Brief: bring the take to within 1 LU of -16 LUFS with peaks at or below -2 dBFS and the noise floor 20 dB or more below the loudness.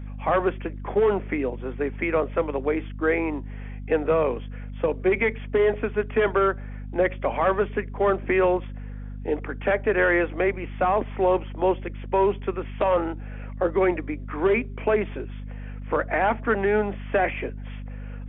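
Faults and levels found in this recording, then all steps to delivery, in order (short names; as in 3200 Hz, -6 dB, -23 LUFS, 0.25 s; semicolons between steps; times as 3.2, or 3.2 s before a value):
hum 50 Hz; harmonics up to 250 Hz; hum level -32 dBFS; loudness -24.5 LUFS; peak -11.5 dBFS; loudness target -16.0 LUFS
-> de-hum 50 Hz, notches 5; gain +8.5 dB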